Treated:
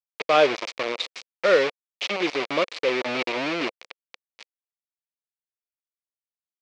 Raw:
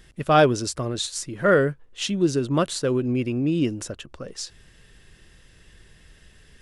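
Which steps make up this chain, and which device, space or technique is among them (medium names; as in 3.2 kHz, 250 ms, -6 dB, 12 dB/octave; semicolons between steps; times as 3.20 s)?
hand-held game console (bit crusher 4-bit; cabinet simulation 470–4700 Hz, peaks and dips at 510 Hz +5 dB, 820 Hz -4 dB, 1.5 kHz -5 dB, 2.3 kHz +7 dB)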